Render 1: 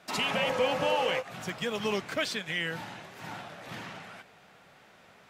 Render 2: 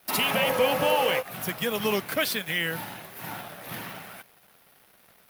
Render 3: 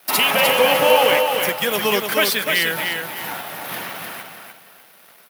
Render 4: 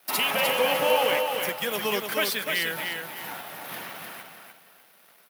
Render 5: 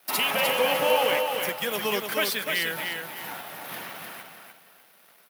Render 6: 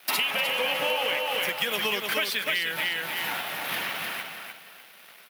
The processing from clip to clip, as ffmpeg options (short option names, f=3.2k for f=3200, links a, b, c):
-af "aeval=exprs='sgn(val(0))*max(abs(val(0))-0.00141,0)':c=same,aexciter=amount=7.1:drive=6.8:freq=10k,volume=4.5dB"
-filter_complex "[0:a]highpass=f=400:p=1,asplit=2[a][b];[b]aecho=0:1:301|602|903|1204:0.562|0.157|0.0441|0.0123[c];[a][c]amix=inputs=2:normalize=0,volume=8.5dB"
-af "highpass=92,volume=-8dB"
-af anull
-af "equalizer=f=2.7k:w=0.78:g=8.5,acompressor=threshold=-27dB:ratio=6,volume=3dB"